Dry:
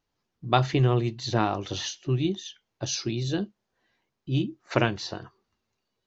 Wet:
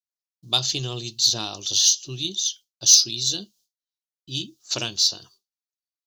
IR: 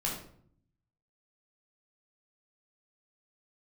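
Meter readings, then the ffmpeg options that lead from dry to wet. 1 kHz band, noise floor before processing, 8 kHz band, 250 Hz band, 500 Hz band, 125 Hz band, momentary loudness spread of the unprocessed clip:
-9.5 dB, -81 dBFS, n/a, -9.5 dB, -9.5 dB, -9.5 dB, 14 LU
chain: -af "agate=range=-33dB:threshold=-50dB:ratio=3:detection=peak,aexciter=amount=13.3:drive=9.4:freq=3.3k,volume=-9.5dB"

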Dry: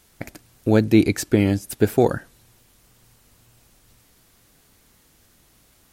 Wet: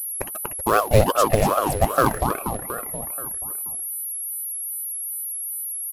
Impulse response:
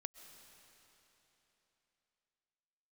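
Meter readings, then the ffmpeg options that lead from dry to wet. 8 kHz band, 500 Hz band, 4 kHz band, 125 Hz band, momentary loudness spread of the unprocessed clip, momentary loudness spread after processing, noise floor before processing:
+12.0 dB, +1.0 dB, +2.0 dB, -1.0 dB, 22 LU, 10 LU, -58 dBFS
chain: -filter_complex "[0:a]asplit=2[a][b];[b]acompressor=threshold=-27dB:ratio=10,volume=0dB[c];[a][c]amix=inputs=2:normalize=0,lowshelf=f=160:t=q:w=1.5:g=-7,acrusher=bits=6:mix=0:aa=0.000001,afftdn=nr=21:nf=-35,acrusher=bits=4:mode=log:mix=0:aa=0.000001,asplit=2[d][e];[e]adelay=240,lowpass=f=4.9k:p=1,volume=-4dB,asplit=2[f][g];[g]adelay=240,lowpass=f=4.9k:p=1,volume=0.54,asplit=2[h][i];[i]adelay=240,lowpass=f=4.9k:p=1,volume=0.54,asplit=2[j][k];[k]adelay=240,lowpass=f=4.9k:p=1,volume=0.54,asplit=2[l][m];[m]adelay=240,lowpass=f=4.9k:p=1,volume=0.54,asplit=2[n][o];[o]adelay=240,lowpass=f=4.9k:p=1,volume=0.54,asplit=2[p][q];[q]adelay=240,lowpass=f=4.9k:p=1,volume=0.54[r];[f][h][j][l][n][p][r]amix=inputs=7:normalize=0[s];[d][s]amix=inputs=2:normalize=0,aeval=exprs='val(0)+0.0355*sin(2*PI*11000*n/s)':c=same,acompressor=mode=upward:threshold=-19dB:ratio=2.5,aeval=exprs='val(0)*sin(2*PI*580*n/s+580*0.65/2.5*sin(2*PI*2.5*n/s))':c=same,volume=-1.5dB"

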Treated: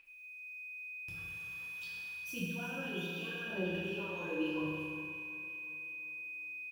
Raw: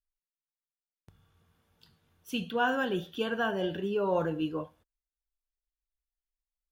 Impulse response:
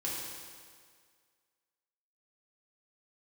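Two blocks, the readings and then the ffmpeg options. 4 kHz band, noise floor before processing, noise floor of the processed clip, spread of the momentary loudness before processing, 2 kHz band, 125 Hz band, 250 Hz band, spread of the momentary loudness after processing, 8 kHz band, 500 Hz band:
-5.0 dB, under -85 dBFS, -50 dBFS, 8 LU, -1.5 dB, -3.5 dB, -5.5 dB, 7 LU, n/a, -10.5 dB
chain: -filter_complex "[0:a]tiltshelf=f=970:g=-9,areverse,acompressor=threshold=-43dB:ratio=6,areverse,aphaser=in_gain=1:out_gain=1:delay=4.8:decay=0.73:speed=0.84:type=sinusoidal,acrossover=split=440[a][b];[b]acompressor=threshold=-53dB:ratio=6[c];[a][c]amix=inputs=2:normalize=0,aeval=exprs='val(0)+0.002*sin(2*PI*2500*n/s)':c=same,aecho=1:1:362|724|1086|1448|1810:0.224|0.119|0.0629|0.0333|0.0177[d];[1:a]atrim=start_sample=2205[e];[d][e]afir=irnorm=-1:irlink=0,volume=3.5dB"

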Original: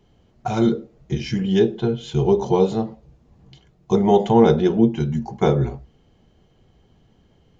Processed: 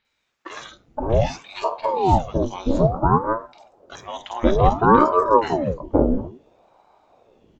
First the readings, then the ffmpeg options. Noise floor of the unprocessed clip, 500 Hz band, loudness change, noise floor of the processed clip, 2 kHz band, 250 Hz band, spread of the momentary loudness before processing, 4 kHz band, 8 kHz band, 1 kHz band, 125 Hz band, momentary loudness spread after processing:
-58 dBFS, -1.5 dB, -0.5 dB, -73 dBFS, +4.5 dB, -4.0 dB, 12 LU, -3.0 dB, n/a, +7.0 dB, -1.5 dB, 20 LU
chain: -filter_complex "[0:a]acrossover=split=1000|4200[a][b][c];[c]adelay=50[d];[a]adelay=520[e];[e][b][d]amix=inputs=3:normalize=0,aeval=exprs='val(0)*sin(2*PI*450*n/s+450*0.8/0.58*sin(2*PI*0.58*n/s))':c=same,volume=3dB"

